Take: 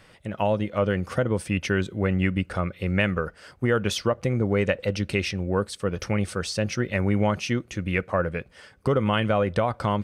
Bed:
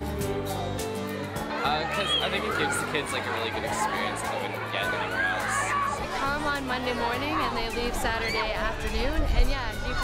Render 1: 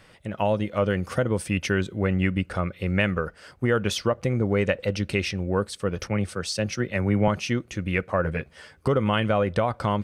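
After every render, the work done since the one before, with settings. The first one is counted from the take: 0.47–1.75 high shelf 5600 Hz +4.5 dB; 6.07–7.28 three-band expander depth 70%; 8.23–8.88 doubler 13 ms -3 dB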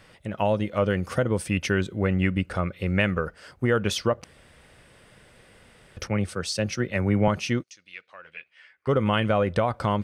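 4.24–5.97 room tone; 7.62–8.87 band-pass 5800 Hz -> 1800 Hz, Q 3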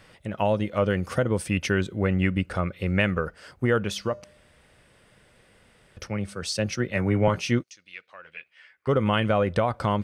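3.85–6.42 resonator 200 Hz, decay 0.66 s, harmonics odd, mix 40%; 6.95–7.59 doubler 17 ms -8.5 dB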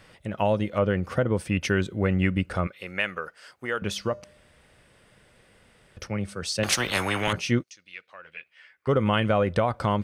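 0.78–1.61 bell 9300 Hz -12 dB -> -5.5 dB 2 oct; 2.67–3.82 HPF 1100 Hz 6 dB/oct; 6.63–7.33 spectral compressor 4:1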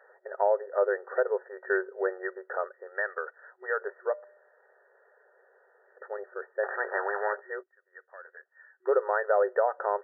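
notch 1100 Hz, Q 5.6; FFT band-pass 370–1900 Hz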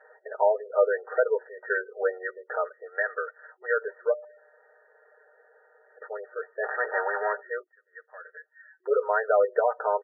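spectral gate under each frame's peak -20 dB strong; comb 6.5 ms, depth 98%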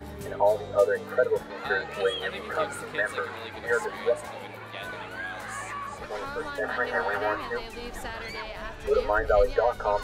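add bed -9 dB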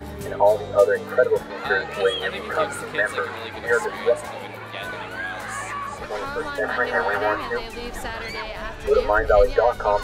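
gain +5.5 dB

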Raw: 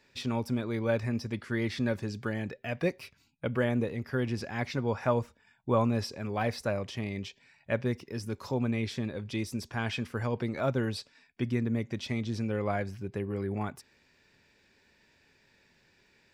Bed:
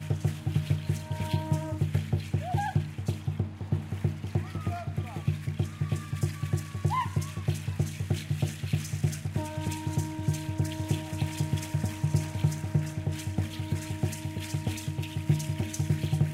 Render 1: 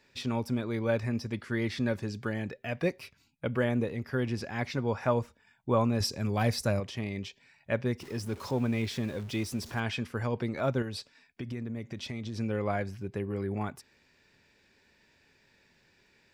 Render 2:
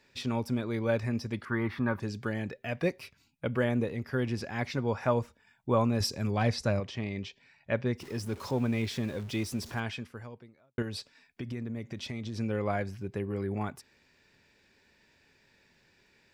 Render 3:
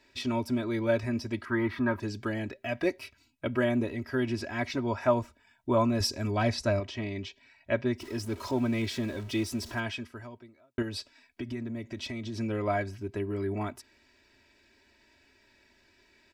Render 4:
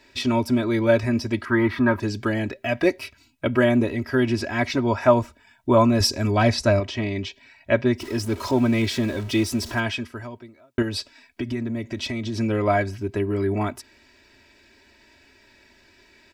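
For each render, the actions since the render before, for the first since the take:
6–6.8 tone controls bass +7 dB, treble +10 dB; 8–9.8 zero-crossing step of -44 dBFS; 10.82–12.38 compressor, threshold -33 dBFS
1.45–2 EQ curve 350 Hz 0 dB, 540 Hz -4 dB, 1100 Hz +13 dB, 1800 Hz 0 dB, 7500 Hz -21 dB, 13000 Hz -2 dB; 6.31–7.95 LPF 5900 Hz; 9.7–10.78 fade out quadratic
high shelf 12000 Hz -3 dB; comb 3.1 ms, depth 81%
gain +8.5 dB

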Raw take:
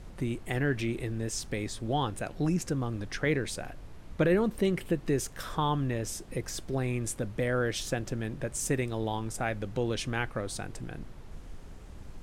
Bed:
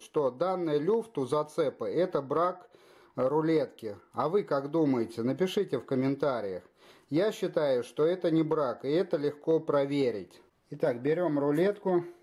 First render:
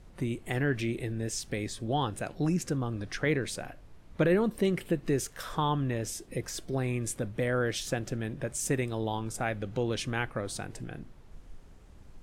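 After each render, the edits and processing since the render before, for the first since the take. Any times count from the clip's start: noise print and reduce 7 dB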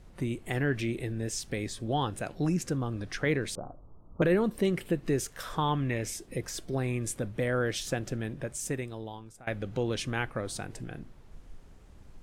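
3.55–4.22 steep low-pass 1300 Hz 96 dB/oct; 5.68–6.16 bell 2200 Hz +11.5 dB 0.39 oct; 8.21–9.47 fade out, to -22 dB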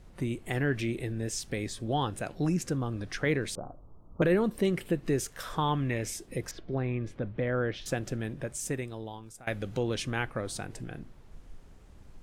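6.51–7.86 air absorption 290 m; 9.23–9.79 high shelf 3800 Hz +7 dB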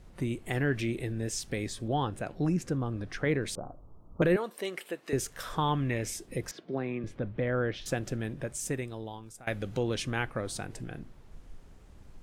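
1.88–3.46 high shelf 2900 Hz -7.5 dB; 4.36–5.13 HPF 570 Hz; 6.51–7.04 HPF 160 Hz 24 dB/oct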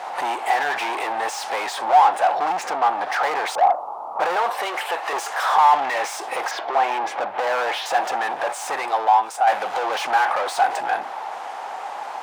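overdrive pedal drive 38 dB, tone 1800 Hz, clips at -15.5 dBFS; resonant high-pass 800 Hz, resonance Q 5.9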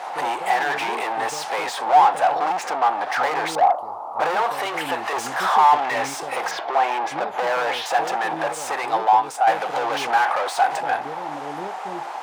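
add bed -9 dB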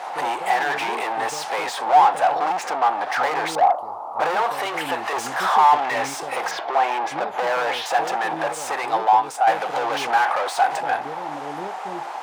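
nothing audible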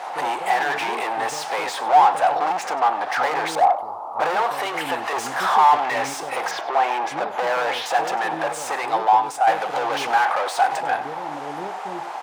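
echo 98 ms -16 dB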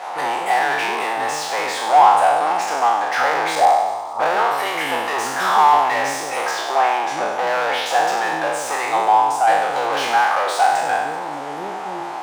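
spectral trails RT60 1.12 s; thin delay 0.192 s, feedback 62%, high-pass 4200 Hz, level -14 dB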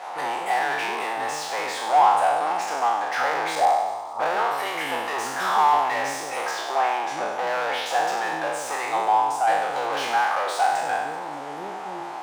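gain -5.5 dB

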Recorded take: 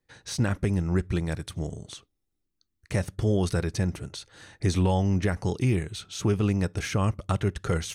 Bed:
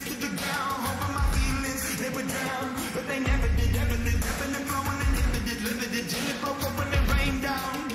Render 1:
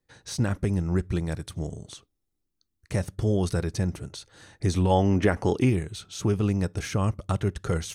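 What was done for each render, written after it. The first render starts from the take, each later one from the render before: 4.9–5.7 spectral gain 210–3500 Hz +7 dB; bell 2300 Hz -3.5 dB 1.6 oct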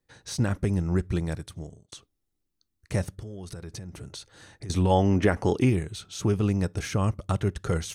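1.27–1.92 fade out; 3.09–4.7 compressor 16:1, threshold -34 dBFS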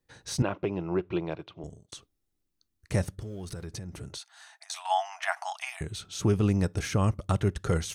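0.42–1.64 speaker cabinet 220–3500 Hz, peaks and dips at 230 Hz -10 dB, 350 Hz +5 dB, 660 Hz +5 dB, 1000 Hz +6 dB, 1800 Hz -9 dB, 2700 Hz +7 dB; 3.21–3.66 zero-crossing step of -54 dBFS; 4.18–5.81 brick-wall FIR high-pass 630 Hz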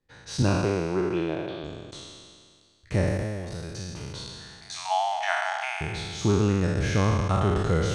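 spectral trails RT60 1.99 s; air absorption 75 m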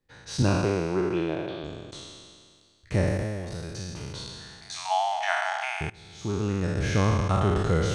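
5.9–6.97 fade in, from -21.5 dB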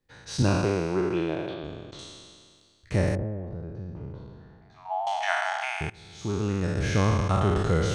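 1.54–1.99 air absorption 120 m; 3.15–5.07 Bessel low-pass 630 Hz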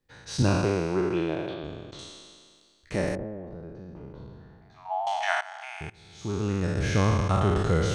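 2.09–4.18 bell 100 Hz -12.5 dB 0.93 oct; 5.41–6.53 fade in, from -15.5 dB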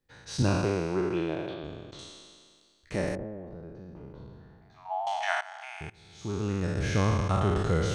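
gain -2.5 dB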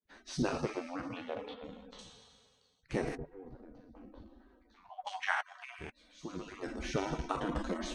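median-filter separation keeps percussive; high shelf 7100 Hz -8.5 dB

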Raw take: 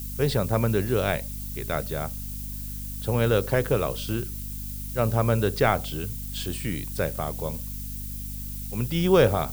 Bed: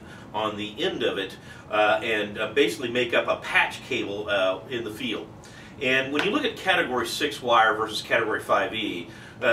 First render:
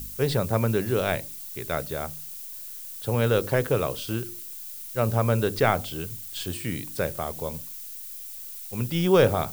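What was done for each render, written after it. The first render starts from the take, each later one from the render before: de-hum 50 Hz, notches 7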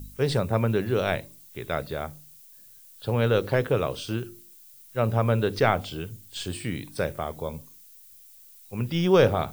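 noise print and reduce 12 dB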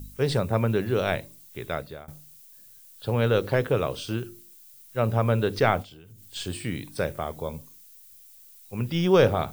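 1.65–2.08 fade out, to -18.5 dB; 5.82–6.26 compressor 12:1, threshold -44 dBFS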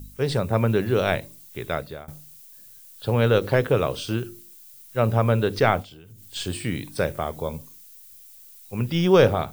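AGC gain up to 3.5 dB; ending taper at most 350 dB/s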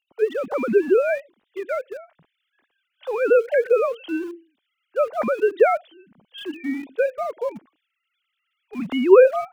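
sine-wave speech; in parallel at -11.5 dB: sample gate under -31.5 dBFS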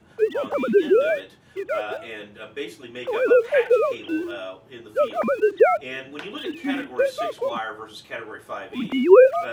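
add bed -11 dB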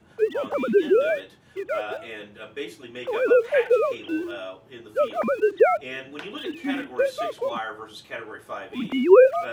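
gain -1.5 dB

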